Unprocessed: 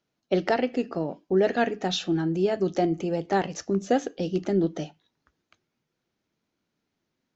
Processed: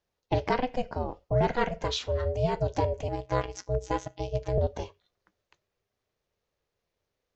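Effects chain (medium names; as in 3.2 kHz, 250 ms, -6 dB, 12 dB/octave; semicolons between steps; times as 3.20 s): 3.08–4.58 s: robot voice 189 Hz; ring modulator 250 Hz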